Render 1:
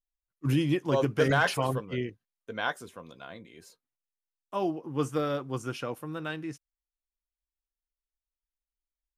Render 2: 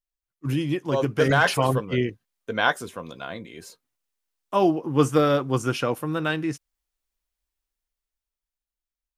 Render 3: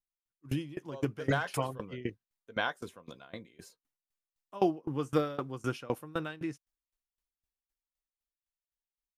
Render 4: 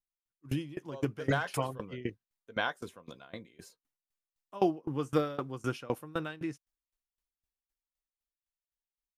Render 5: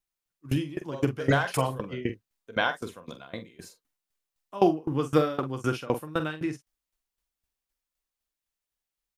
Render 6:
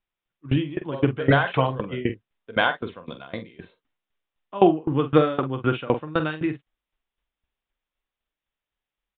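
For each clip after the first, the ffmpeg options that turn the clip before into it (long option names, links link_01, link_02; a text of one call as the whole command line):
ffmpeg -i in.wav -af "dynaudnorm=framelen=230:gausssize=13:maxgain=10dB" out.wav
ffmpeg -i in.wav -af "aeval=exprs='val(0)*pow(10,-22*if(lt(mod(3.9*n/s,1),2*abs(3.9)/1000),1-mod(3.9*n/s,1)/(2*abs(3.9)/1000),(mod(3.9*n/s,1)-2*abs(3.9)/1000)/(1-2*abs(3.9)/1000))/20)':channel_layout=same,volume=-4dB" out.wav
ffmpeg -i in.wav -af anull out.wav
ffmpeg -i in.wav -filter_complex "[0:a]asplit=2[link_01][link_02];[link_02]adelay=45,volume=-10dB[link_03];[link_01][link_03]amix=inputs=2:normalize=0,volume=6dB" out.wav
ffmpeg -i in.wav -af "aresample=8000,aresample=44100,volume=5dB" out.wav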